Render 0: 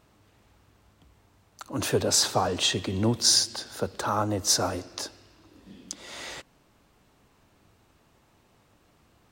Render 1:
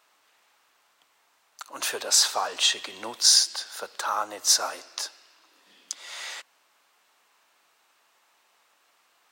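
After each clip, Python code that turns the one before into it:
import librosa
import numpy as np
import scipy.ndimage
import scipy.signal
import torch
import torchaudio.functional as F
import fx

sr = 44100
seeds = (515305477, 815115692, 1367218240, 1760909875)

y = scipy.signal.sosfilt(scipy.signal.butter(2, 960.0, 'highpass', fs=sr, output='sos'), x)
y = F.gain(torch.from_numpy(y), 3.0).numpy()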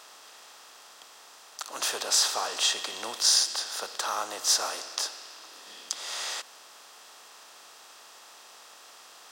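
y = fx.bin_compress(x, sr, power=0.6)
y = F.gain(torch.from_numpy(y), -6.0).numpy()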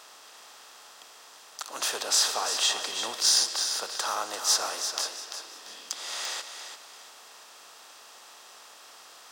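y = np.clip(x, -10.0 ** (-13.5 / 20.0), 10.0 ** (-13.5 / 20.0))
y = fx.echo_feedback(y, sr, ms=342, feedback_pct=30, wet_db=-8.5)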